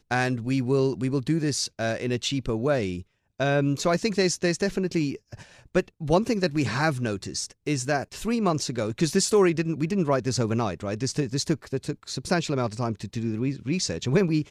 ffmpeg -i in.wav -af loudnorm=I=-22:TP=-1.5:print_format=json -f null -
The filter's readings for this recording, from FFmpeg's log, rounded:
"input_i" : "-26.2",
"input_tp" : "-8.2",
"input_lra" : "2.3",
"input_thresh" : "-36.3",